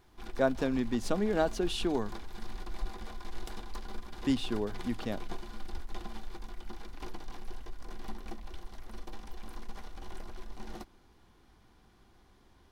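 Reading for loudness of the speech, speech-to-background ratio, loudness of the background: −32.5 LKFS, 14.5 dB, −47.0 LKFS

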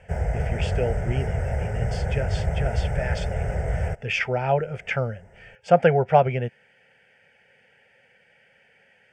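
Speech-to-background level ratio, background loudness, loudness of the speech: 2.0 dB, −27.5 LKFS, −25.5 LKFS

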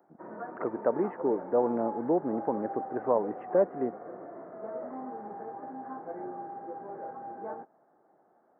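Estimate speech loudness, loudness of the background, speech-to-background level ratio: −30.5 LKFS, −41.0 LKFS, 10.5 dB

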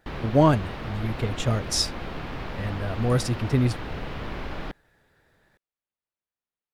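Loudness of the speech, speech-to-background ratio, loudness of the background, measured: −25.5 LKFS, 10.0 dB, −35.5 LKFS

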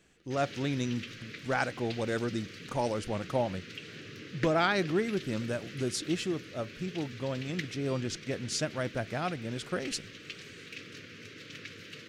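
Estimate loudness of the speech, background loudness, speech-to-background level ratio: −33.5 LKFS, −44.5 LKFS, 11.0 dB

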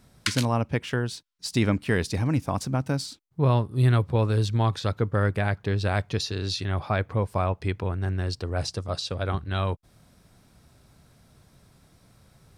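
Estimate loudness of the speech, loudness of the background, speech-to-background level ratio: −26.5 LKFS, −31.5 LKFS, 5.0 dB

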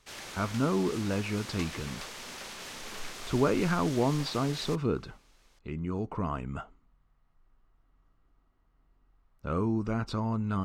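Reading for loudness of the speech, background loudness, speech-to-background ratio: −31.0 LKFS, −41.5 LKFS, 10.5 dB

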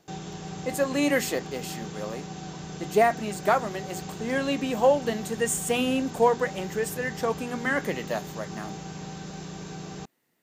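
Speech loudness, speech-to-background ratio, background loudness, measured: −27.0 LKFS, 11.0 dB, −38.0 LKFS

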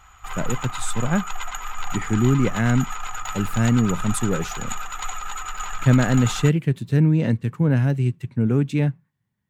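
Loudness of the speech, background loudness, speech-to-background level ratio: −21.5 LKFS, −31.5 LKFS, 10.0 dB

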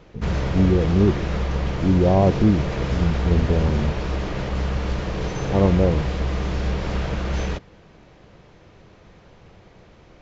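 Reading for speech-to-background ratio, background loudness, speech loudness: 4.5 dB, −26.0 LKFS, −21.5 LKFS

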